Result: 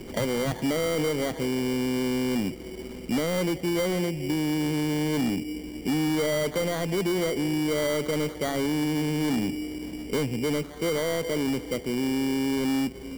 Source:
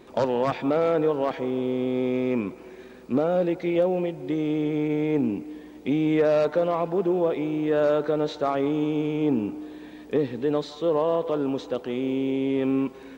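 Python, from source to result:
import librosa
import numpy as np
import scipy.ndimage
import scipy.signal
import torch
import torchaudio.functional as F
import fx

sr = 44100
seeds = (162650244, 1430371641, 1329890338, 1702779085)

y = fx.tilt_eq(x, sr, slope=-4.5)
y = fx.sample_hold(y, sr, seeds[0], rate_hz=2600.0, jitter_pct=0)
y = 10.0 ** (-16.5 / 20.0) * np.tanh(y / 10.0 ** (-16.5 / 20.0))
y = fx.band_squash(y, sr, depth_pct=40)
y = y * librosa.db_to_amplitude(-5.0)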